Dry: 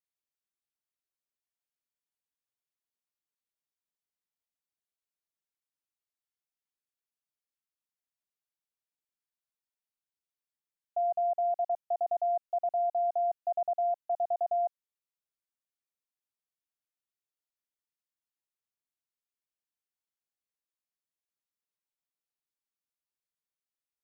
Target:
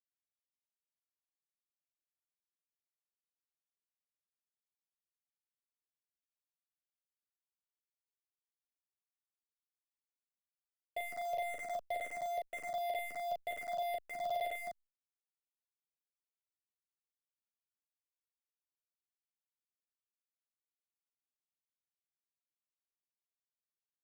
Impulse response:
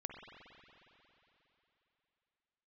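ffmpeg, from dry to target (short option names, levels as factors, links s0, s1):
-filter_complex "[0:a]equalizer=f=370:t=o:w=0.92:g=-8.5,asettb=1/sr,asplit=3[s0][s1][s2];[s0]atrim=end=11.254[s3];[s1]atrim=start=11.25:end=12.72,asetpts=PTS-STARTPTS,afade=t=in:d=0.004:c=qsin,afade=t=out:st=1.466:d=0.004:c=qsin,asoftclip=type=hard:threshold=0.0335[s4];[s2]atrim=start=12.716[s5];[s3][s4]acrossfade=d=0.004:c1=hsin:c2=qsin[s6];[s6][s5]acrossfade=d=0.004:c1=qsin:c2=hsin,lowpass=f=490:t=q:w=3.8,asoftclip=type=tanh:threshold=0.0188,acrusher=bits=7:mix=0:aa=0.5,aeval=exprs='0.0168*(cos(1*acos(clip(val(0)/0.0168,-1,1)))-cos(1*PI/2))+0.00237*(cos(5*acos(clip(val(0)/0.0168,-1,1)))-cos(5*PI/2))+0.000473*(cos(8*acos(clip(val(0)/0.0168,-1,1)))-cos(8*PI/2))':c=same,aecho=1:1:11|41:0.562|0.668,asplit=2[s7][s8];[s8]afreqshift=-2[s9];[s7][s9]amix=inputs=2:normalize=1,volume=1.58"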